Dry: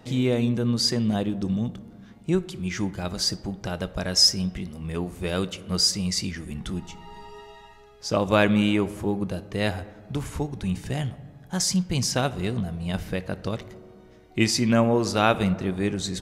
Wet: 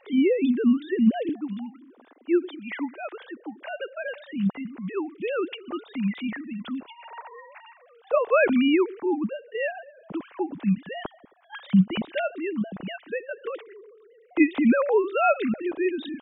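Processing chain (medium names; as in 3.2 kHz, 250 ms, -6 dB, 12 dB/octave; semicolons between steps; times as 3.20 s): formants replaced by sine waves; 1.29–4.04 s: high-pass 300 Hz 24 dB/octave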